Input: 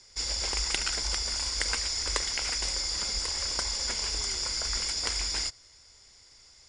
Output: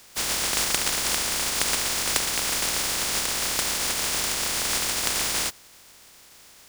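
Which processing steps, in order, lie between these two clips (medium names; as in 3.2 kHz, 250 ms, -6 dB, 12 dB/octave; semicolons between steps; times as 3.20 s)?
spectral contrast reduction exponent 0.12; trim +5.5 dB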